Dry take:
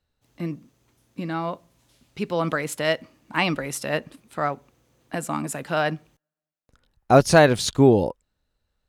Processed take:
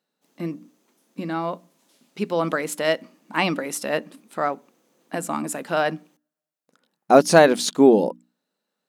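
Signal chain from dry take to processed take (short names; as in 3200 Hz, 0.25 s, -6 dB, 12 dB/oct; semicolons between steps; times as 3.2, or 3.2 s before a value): brick-wall FIR high-pass 160 Hz; bell 2500 Hz -3 dB 2.3 oct; notches 60/120/180/240/300 Hz; gain +2.5 dB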